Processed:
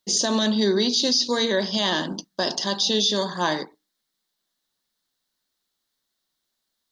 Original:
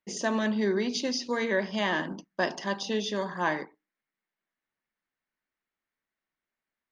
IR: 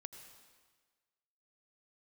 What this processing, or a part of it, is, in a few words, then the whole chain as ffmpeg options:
over-bright horn tweeter: -af "highshelf=f=3k:t=q:w=3:g=8.5,alimiter=limit=-18dB:level=0:latency=1:release=19,volume=6dB"

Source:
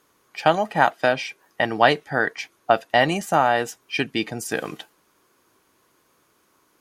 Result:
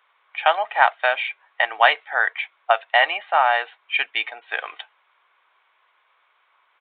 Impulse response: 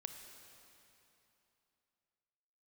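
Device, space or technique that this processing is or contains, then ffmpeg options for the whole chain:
musical greeting card: -af "aresample=8000,aresample=44100,highpass=f=720:w=0.5412,highpass=f=720:w=1.3066,equalizer=f=2.2k:t=o:w=0.21:g=6,volume=3dB"

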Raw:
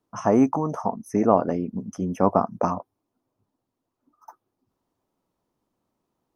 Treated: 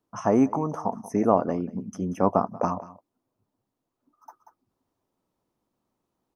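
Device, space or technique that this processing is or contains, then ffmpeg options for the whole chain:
ducked delay: -filter_complex "[0:a]asplit=3[a][b][c];[b]adelay=185,volume=-8dB[d];[c]apad=whole_len=288535[e];[d][e]sidechaincompress=threshold=-28dB:ratio=8:attack=45:release=1220[f];[a][f]amix=inputs=2:normalize=0,volume=-2dB"

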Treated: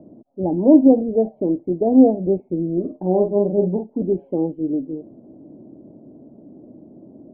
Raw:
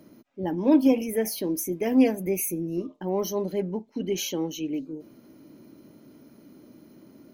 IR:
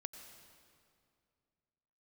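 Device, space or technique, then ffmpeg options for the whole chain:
under water: -filter_complex "[0:a]highshelf=f=2.3k:g=-10,asettb=1/sr,asplit=3[a][b][c];[a]atrim=end=2.804[d];[b]atrim=start=2.8:end=4.02,asetpts=PTS-STARTPTS,afade=t=in:d=0.004:c=qsin,afade=t=out:st=1.216:d=0.004:c=qsin,asplit=2[e][f];[f]adelay=44,volume=-4.5dB[g];[e][g]amix=inputs=2:normalize=0,atrim=end_sample=53802[h];[c]atrim=start=4.016[i];[d][h]acrossfade=d=0.004:c1=hsin:c2=qsin[j];[j][i]acrossfade=d=0.004:c1=qsin:c2=hsin,lowpass=f=670:w=0.5412,lowpass=f=670:w=1.3066,equalizer=f=720:t=o:w=0.51:g=8,volume=7.5dB"

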